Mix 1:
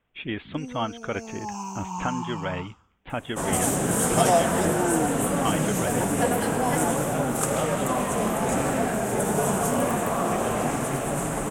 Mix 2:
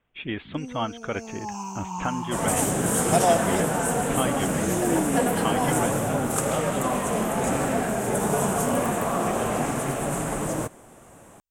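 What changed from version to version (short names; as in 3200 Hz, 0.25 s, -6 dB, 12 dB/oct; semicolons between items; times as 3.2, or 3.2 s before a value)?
second sound: entry -1.05 s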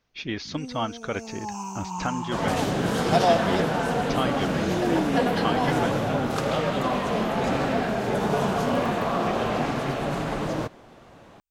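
speech: remove steep low-pass 3400 Hz 72 dB/oct; second sound: add resonant high shelf 6200 Hz -12.5 dB, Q 3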